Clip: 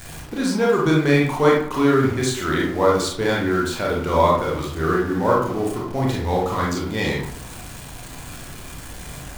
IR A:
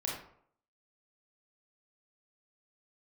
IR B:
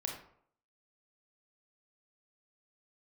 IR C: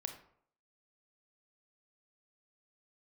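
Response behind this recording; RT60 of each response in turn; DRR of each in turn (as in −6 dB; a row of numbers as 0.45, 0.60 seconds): A; 0.65, 0.65, 0.65 seconds; −3.5, 0.5, 5.5 decibels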